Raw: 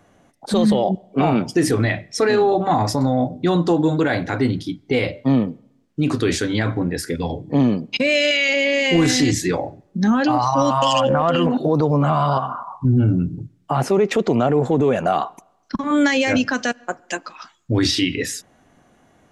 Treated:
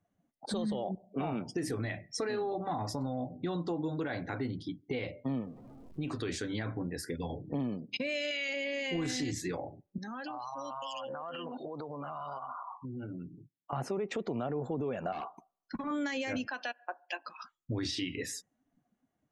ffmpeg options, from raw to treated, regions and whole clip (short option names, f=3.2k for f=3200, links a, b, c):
-filter_complex "[0:a]asettb=1/sr,asplit=3[a][b][c];[a]atrim=end=5.414[d];[b]atrim=start=5.41:end=6.29,asetpts=PTS-STARTPTS,afade=t=in:d=0.004:c=qsin,afade=t=out:st=0.876:d=0.004:c=qsin,aeval=exprs='val(0)+0.5*0.0188*sgn(val(0))':c=same,equalizer=f=230:w=0.71:g=-4[e];[c]atrim=start=6.286[f];[d][e]acrossfade=d=0.004:c1=hsin:c2=qsin[g];[g][f]acrossfade=d=0.004:c1=qsin:c2=hsin,asettb=1/sr,asplit=3[h][i][j];[h]atrim=end=9.984[k];[i]atrim=start=9.98:end=13.73,asetpts=PTS-STARTPTS,afade=t=in:d=0.004:c=qsin,afade=t=out:st=3.746:d=0.004:c=qsin,highpass=f=770:p=1,acompressor=threshold=-28dB:ratio=6:attack=3.2:release=140:knee=1:detection=peak[l];[j]atrim=start=13.726[m];[k][l]acrossfade=d=0.004:c1=hsin:c2=qsin[n];[n][m]acrossfade=d=0.004:c1=qsin:c2=hsin,asettb=1/sr,asplit=3[o][p][q];[o]atrim=end=15.124[r];[p]atrim=start=15.12:end=15.88,asetpts=PTS-STARTPTS,afade=t=in:d=0.004:c=qsin,afade=t=out:st=0.756:d=0.004:c=qsin,acrossover=split=5400[s][t];[t]acompressor=threshold=-53dB:ratio=4:attack=1:release=60[u];[s][u]amix=inputs=2:normalize=0,volume=20dB,asoftclip=hard,volume=-20dB,asplit=2[v][w];[w]adelay=13,volume=-13dB[x];[v][x]amix=inputs=2:normalize=0,atrim=end_sample=33516[y];[q]atrim=start=15.876[z];[r][y]acrossfade=d=0.004:c1=hsin:c2=qsin[aa];[aa][z]acrossfade=d=0.004:c1=qsin:c2=hsin,asettb=1/sr,asplit=3[ab][ac][ad];[ab]atrim=end=16.474[ae];[ac]atrim=start=16.47:end=17.26,asetpts=PTS-STARTPTS,afade=t=in:d=0.004:c=qsin,afade=t=out:st=0.786:d=0.004:c=qsin,highpass=f=370:w=0.5412,highpass=f=370:w=1.3066,equalizer=f=450:t=q:w=4:g=-6,equalizer=f=1.8k:t=q:w=4:g=-4,equalizer=f=2.7k:t=q:w=4:g=5,lowpass=f=4.6k:w=0.5412,lowpass=f=4.6k:w=1.3066,aecho=1:1:1.2:0.37,atrim=end_sample=34839[af];[ad]atrim=start=17.256[ag];[ae][af]acrossfade=d=0.004:c1=hsin:c2=qsin[ah];[ah][ag]acrossfade=d=0.004:c1=qsin:c2=hsin,afftdn=nr=21:nf=-41,acompressor=threshold=-28dB:ratio=2.5,volume=-8dB"